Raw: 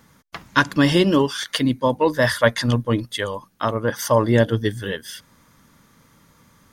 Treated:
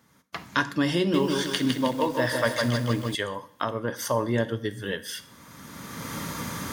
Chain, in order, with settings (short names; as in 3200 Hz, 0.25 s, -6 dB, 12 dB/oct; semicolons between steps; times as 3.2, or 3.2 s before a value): recorder AGC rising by 21 dB/s; HPF 89 Hz; reverb, pre-delay 3 ms, DRR 10.5 dB; 0.98–3.15 lo-fi delay 0.157 s, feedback 55%, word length 6-bit, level -3.5 dB; gain -8.5 dB